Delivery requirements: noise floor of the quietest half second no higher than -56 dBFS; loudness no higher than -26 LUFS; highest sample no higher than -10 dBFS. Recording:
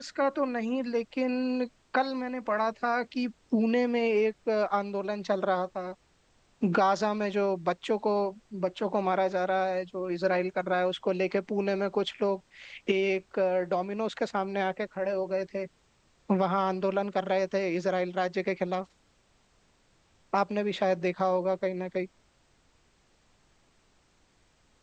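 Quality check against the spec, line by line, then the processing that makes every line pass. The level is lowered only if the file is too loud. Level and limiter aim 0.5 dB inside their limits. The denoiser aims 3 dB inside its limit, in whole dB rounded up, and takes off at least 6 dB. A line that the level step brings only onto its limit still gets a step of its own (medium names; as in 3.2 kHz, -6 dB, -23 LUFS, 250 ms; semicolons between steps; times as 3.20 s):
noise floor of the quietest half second -66 dBFS: pass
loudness -29.5 LUFS: pass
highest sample -13.0 dBFS: pass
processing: none needed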